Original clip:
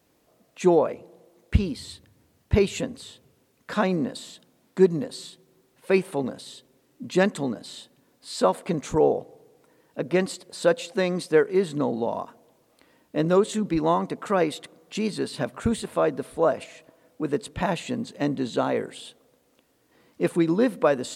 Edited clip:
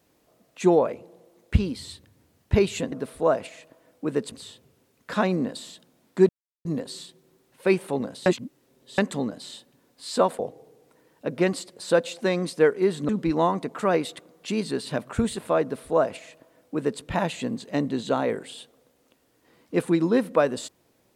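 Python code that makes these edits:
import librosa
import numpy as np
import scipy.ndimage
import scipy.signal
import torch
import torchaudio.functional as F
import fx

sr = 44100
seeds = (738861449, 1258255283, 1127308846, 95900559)

y = fx.edit(x, sr, fx.insert_silence(at_s=4.89, length_s=0.36),
    fx.reverse_span(start_s=6.5, length_s=0.72),
    fx.cut(start_s=8.63, length_s=0.49),
    fx.cut(start_s=11.82, length_s=1.74),
    fx.duplicate(start_s=16.09, length_s=1.4, to_s=2.92), tone=tone)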